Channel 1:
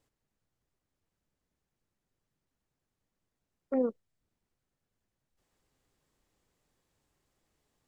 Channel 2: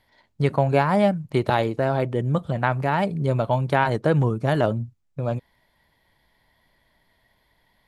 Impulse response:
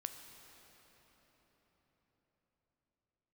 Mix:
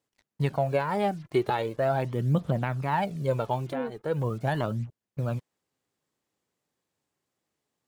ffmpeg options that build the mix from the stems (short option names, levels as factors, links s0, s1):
-filter_complex "[0:a]highpass=130,volume=0.668,asplit=2[s0][s1];[1:a]equalizer=f=86:w=4.3:g=-10.5,acrusher=bits=7:mix=0:aa=0.5,aphaser=in_gain=1:out_gain=1:delay=3:decay=0.5:speed=0.4:type=triangular,volume=0.562[s2];[s1]apad=whole_len=347481[s3];[s2][s3]sidechaincompress=threshold=0.00631:ratio=5:attack=12:release=390[s4];[s0][s4]amix=inputs=2:normalize=0,alimiter=limit=0.188:level=0:latency=1:release=412"